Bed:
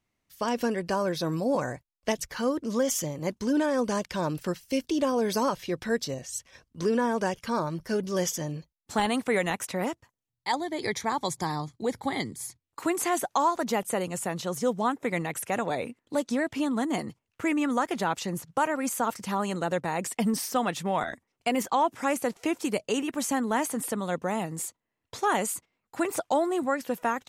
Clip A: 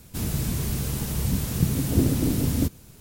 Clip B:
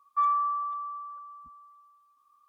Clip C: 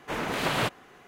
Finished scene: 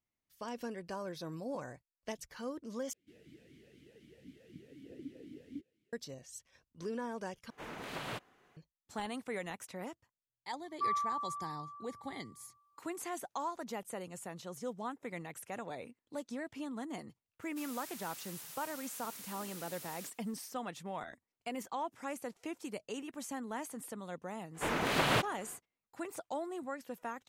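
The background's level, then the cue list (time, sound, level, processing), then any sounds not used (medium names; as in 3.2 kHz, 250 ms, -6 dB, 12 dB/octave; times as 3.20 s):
bed -14 dB
2.93 s: replace with A -14 dB + talking filter e-i 4 Hz
7.50 s: replace with C -14.5 dB
10.64 s: add B -8.5 dB
17.42 s: add A -13.5 dB + high-pass 1.1 kHz
24.53 s: add C -2.5 dB, fades 0.05 s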